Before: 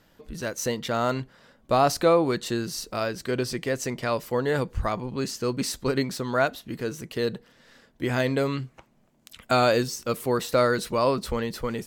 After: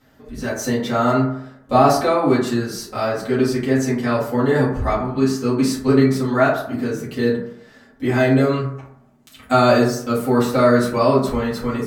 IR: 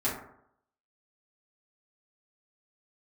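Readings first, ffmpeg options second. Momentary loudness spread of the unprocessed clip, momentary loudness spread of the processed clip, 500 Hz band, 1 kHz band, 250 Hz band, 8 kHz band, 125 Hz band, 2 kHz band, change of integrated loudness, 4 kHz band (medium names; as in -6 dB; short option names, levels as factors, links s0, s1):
11 LU, 10 LU, +6.5 dB, +7.0 dB, +11.0 dB, +2.0 dB, +9.0 dB, +5.5 dB, +7.5 dB, +2.0 dB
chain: -filter_complex "[1:a]atrim=start_sample=2205[s0];[0:a][s0]afir=irnorm=-1:irlink=0,volume=0.75"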